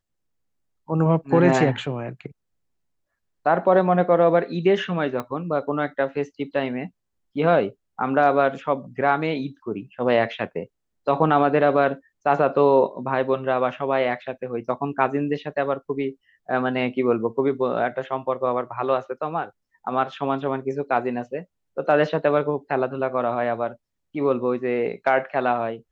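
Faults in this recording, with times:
5.20 s: pop -16 dBFS

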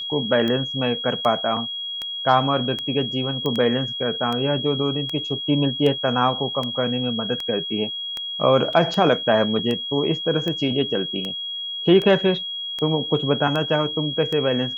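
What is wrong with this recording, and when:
tick 78 rpm -14 dBFS
whine 3.3 kHz -27 dBFS
3.46 s: pop -13 dBFS
8.73 s: dropout 3 ms

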